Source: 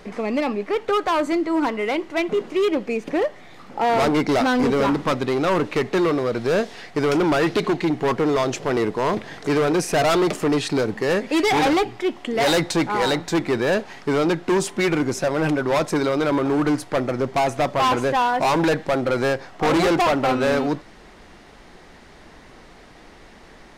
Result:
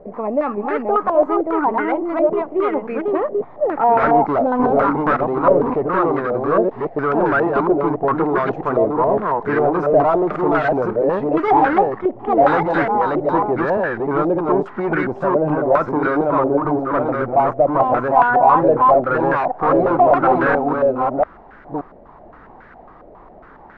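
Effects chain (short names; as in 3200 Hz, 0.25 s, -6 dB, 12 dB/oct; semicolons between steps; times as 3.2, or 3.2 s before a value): reverse delay 0.574 s, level -2 dB; stepped low-pass 7.3 Hz 600–1500 Hz; gain -2 dB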